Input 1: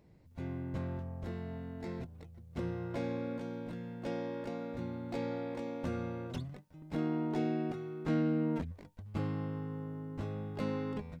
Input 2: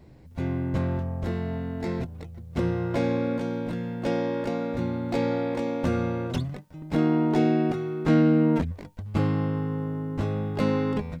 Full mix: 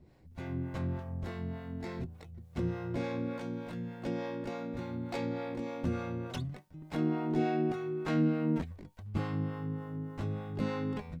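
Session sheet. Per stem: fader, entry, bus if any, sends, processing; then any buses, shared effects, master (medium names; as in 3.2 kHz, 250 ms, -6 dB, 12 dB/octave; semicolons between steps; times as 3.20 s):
-14.0 dB, 0.00 s, no send, none
-0.5 dB, 0.00 s, no send, feedback comb 370 Hz, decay 0.16 s, harmonics all, mix 50%; harmonic tremolo 3.4 Hz, depth 70%, crossover 450 Hz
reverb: none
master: none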